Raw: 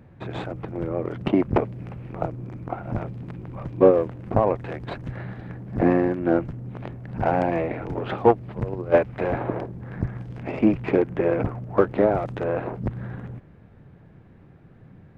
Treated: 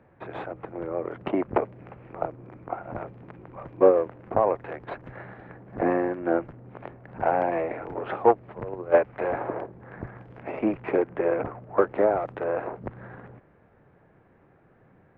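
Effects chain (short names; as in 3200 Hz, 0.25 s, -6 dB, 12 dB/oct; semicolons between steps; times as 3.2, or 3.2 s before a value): three-band isolator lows -13 dB, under 360 Hz, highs -19 dB, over 2500 Hz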